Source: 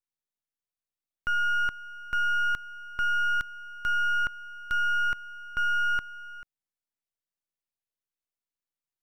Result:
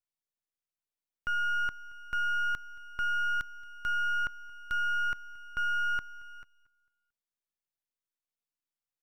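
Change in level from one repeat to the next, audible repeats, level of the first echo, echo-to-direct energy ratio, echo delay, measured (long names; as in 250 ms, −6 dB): −7.0 dB, 2, −23.0 dB, −22.0 dB, 225 ms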